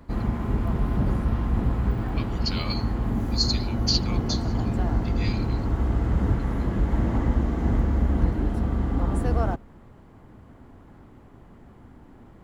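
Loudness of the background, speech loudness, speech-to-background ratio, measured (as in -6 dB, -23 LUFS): -26.0 LUFS, -30.0 LUFS, -4.0 dB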